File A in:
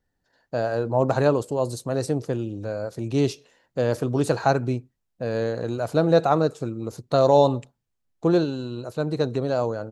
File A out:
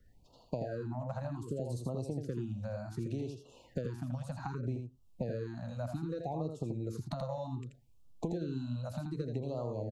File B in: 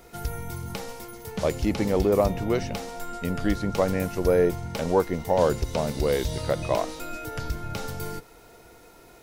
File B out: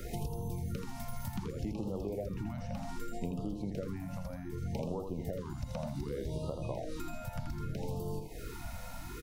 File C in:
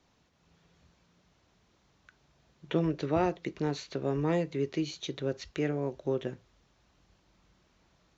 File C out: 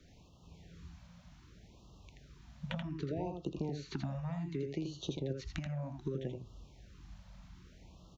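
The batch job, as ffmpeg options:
-filter_complex "[0:a]acrossover=split=120|1200[a][b][c];[a]acompressor=threshold=-45dB:ratio=4[d];[b]acompressor=threshold=-26dB:ratio=4[e];[c]acompressor=threshold=-47dB:ratio=4[f];[d][e][f]amix=inputs=3:normalize=0,lowshelf=f=170:g=11.5,acompressor=threshold=-38dB:ratio=12,aecho=1:1:82:0.531,afftfilt=real='re*(1-between(b*sr/1024,350*pow(1900/350,0.5+0.5*sin(2*PI*0.65*pts/sr))/1.41,350*pow(1900/350,0.5+0.5*sin(2*PI*0.65*pts/sr))*1.41))':imag='im*(1-between(b*sr/1024,350*pow(1900/350,0.5+0.5*sin(2*PI*0.65*pts/sr))/1.41,350*pow(1900/350,0.5+0.5*sin(2*PI*0.65*pts/sr))*1.41))':win_size=1024:overlap=0.75,volume=4dB"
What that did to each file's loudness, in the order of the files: -15.0, -13.0, -8.0 LU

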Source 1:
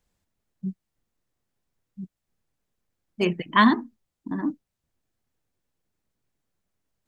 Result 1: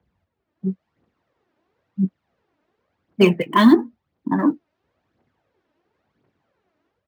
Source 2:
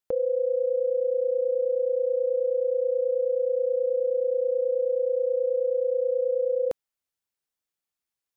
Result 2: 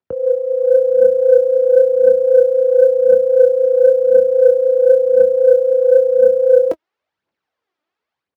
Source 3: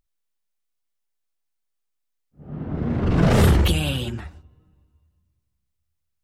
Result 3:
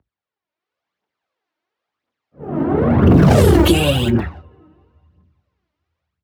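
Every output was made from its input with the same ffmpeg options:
-filter_complex "[0:a]acrossover=split=230|3800[a][b][c];[b]dynaudnorm=f=430:g=3:m=11dB[d];[c]acrusher=bits=7:mix=0:aa=0.000001[e];[a][d][e]amix=inputs=3:normalize=0,aphaser=in_gain=1:out_gain=1:delay=3.4:decay=0.58:speed=0.96:type=triangular,acrossover=split=460|3000[f][g][h];[g]acompressor=threshold=-22dB:ratio=6[i];[f][i][h]amix=inputs=3:normalize=0,asoftclip=type=tanh:threshold=-4dB,highpass=f=67:w=0.5412,highpass=f=67:w=1.3066,equalizer=f=3k:w=0.68:g=-6.5,asplit=2[j][k];[k]adelay=21,volume=-13.5dB[l];[j][l]amix=inputs=2:normalize=0,alimiter=level_in=7dB:limit=-1dB:release=50:level=0:latency=1,volume=-1dB"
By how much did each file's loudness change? +5.0, +13.0, +7.0 LU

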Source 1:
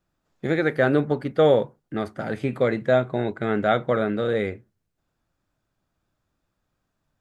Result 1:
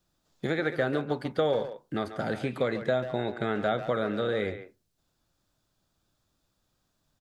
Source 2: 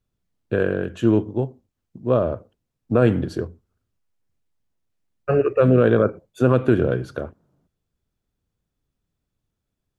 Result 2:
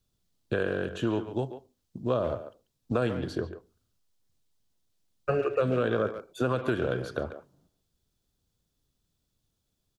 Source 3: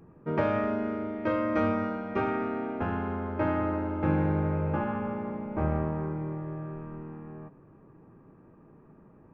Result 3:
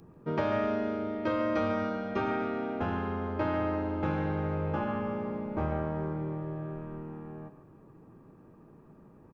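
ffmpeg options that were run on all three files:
-filter_complex "[0:a]highshelf=f=2.9k:t=q:w=1.5:g=6.5,acrossover=split=670|2700[a][b][c];[a]acompressor=threshold=-29dB:ratio=4[d];[b]acompressor=threshold=-30dB:ratio=4[e];[c]acompressor=threshold=-51dB:ratio=4[f];[d][e][f]amix=inputs=3:normalize=0,asplit=2[g][h];[h]adelay=140,highpass=300,lowpass=3.4k,asoftclip=type=hard:threshold=-22dB,volume=-10dB[i];[g][i]amix=inputs=2:normalize=0"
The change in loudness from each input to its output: -6.5, -10.0, -2.0 LU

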